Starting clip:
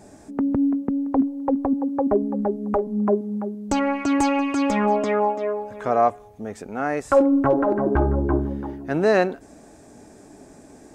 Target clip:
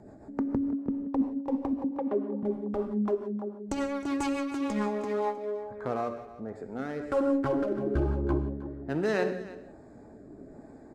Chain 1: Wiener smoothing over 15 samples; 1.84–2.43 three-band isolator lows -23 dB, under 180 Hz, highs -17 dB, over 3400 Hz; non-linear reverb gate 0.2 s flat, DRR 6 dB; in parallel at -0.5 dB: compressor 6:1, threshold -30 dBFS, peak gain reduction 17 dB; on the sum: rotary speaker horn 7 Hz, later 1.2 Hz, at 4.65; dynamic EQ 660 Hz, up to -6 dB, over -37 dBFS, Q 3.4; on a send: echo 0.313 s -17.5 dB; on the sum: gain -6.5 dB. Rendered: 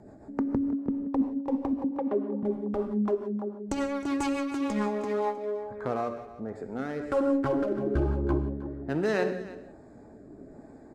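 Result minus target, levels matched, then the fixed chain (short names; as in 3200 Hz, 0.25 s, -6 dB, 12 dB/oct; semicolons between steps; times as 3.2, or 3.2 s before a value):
compressor: peak gain reduction -7.5 dB
Wiener smoothing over 15 samples; 1.84–2.43 three-band isolator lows -23 dB, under 180 Hz, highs -17 dB, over 3400 Hz; non-linear reverb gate 0.2 s flat, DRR 6 dB; in parallel at -0.5 dB: compressor 6:1, threshold -39 dBFS, peak gain reduction 24.5 dB; on the sum: rotary speaker horn 7 Hz, later 1.2 Hz, at 4.65; dynamic EQ 660 Hz, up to -6 dB, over -37 dBFS, Q 3.4; on a send: echo 0.313 s -17.5 dB; on the sum: gain -6.5 dB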